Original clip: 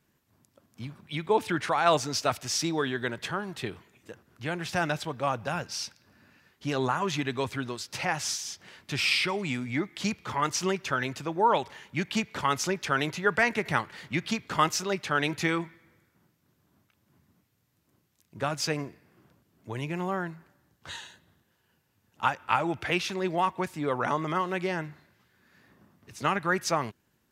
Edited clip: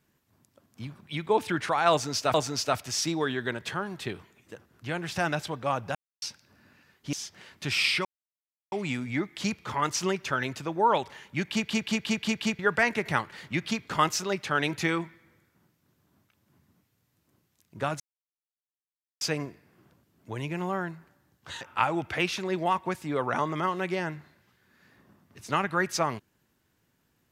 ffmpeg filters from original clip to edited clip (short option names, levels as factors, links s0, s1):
-filter_complex "[0:a]asplit=14[s0][s1][s2][s3][s4][s5][s6][s7][s8][s9][s10][s11][s12][s13];[s0]atrim=end=2.342[s14];[s1]atrim=start=1.908:end=5.52,asetpts=PTS-STARTPTS,afade=t=out:st=3.608:d=0.004:c=hsin[s15];[s2]atrim=start=5.52:end=5.79,asetpts=PTS-STARTPTS,volume=0[s16];[s3]atrim=start=5.79:end=6.702,asetpts=PTS-STARTPTS,afade=t=in:d=0.004:c=hsin[s17];[s4]atrim=start=8.398:end=9.32,asetpts=PTS-STARTPTS,afade=t=out:st=0.918:d=0.004:c=hsin,apad=pad_dur=0.67[s18];[s5]atrim=start=9.32:end=12.292,asetpts=PTS-STARTPTS,afade=t=in:d=0.004:c=hsin[s19];[s6]atrim=start=12.108:end=12.292[s20];[s7]atrim=start=12.108:end=12.292[s21];[s8]atrim=start=12.108:end=12.292[s22];[s9]atrim=start=12.108:end=12.292[s23];[s10]atrim=start=12.108:end=12.292[s24];[s11]atrim=start=13.188:end=18.6,asetpts=PTS-STARTPTS,afade=t=out:st=5.408:d=0.004:c=hsin,apad=pad_dur=1.21[s25];[s12]atrim=start=18.6:end=21.002,asetpts=PTS-STARTPTS,afade=t=in:d=0.004:c=hsin[s26];[s13]atrim=start=22.328[s27];[s15][s16][s17]concat=n=3:v=0:a=1[s28];[s14][s28]acrossfade=d=0.004:c1=hsin:c2=hsin[s29];[s18][s19]concat=n=2:v=0:a=1[s30];[s29][s30]acrossfade=d=0.004:c1=hsin:c2=hsin[s31];[s31][s20]acrossfade=d=0.004:c1=hsin:c2=hsin[s32];[s32][s21]acrossfade=d=0.004:c1=hsin:c2=hsin[s33];[s33][s22]acrossfade=d=0.004:c1=hsin:c2=hsin[s34];[s34][s23]acrossfade=d=0.004:c1=hsin:c2=hsin[s35];[s35][s24]acrossfade=d=0.004:c1=hsin:c2=hsin[s36];[s25][s26]concat=n=2:v=0:a=1[s37];[s36][s37]acrossfade=d=0.004:c1=hsin:c2=hsin[s38];[s38][s27]acrossfade=d=0.004:c1=hsin:c2=hsin"